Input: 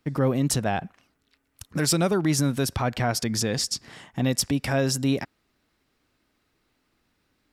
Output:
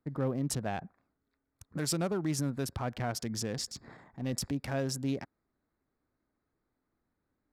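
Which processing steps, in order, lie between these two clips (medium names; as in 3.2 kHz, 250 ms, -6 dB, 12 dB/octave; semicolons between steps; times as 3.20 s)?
local Wiener filter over 15 samples; 3.65–4.50 s: transient shaper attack -7 dB, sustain +8 dB; trim -9 dB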